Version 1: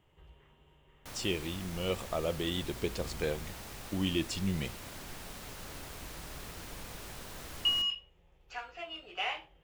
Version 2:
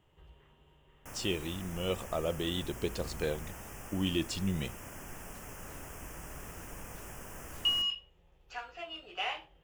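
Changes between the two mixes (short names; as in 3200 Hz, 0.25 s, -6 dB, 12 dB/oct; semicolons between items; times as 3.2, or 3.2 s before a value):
first sound: add Butterworth band-stop 4000 Hz, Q 1.4; master: add bell 2200 Hz -4 dB 0.21 oct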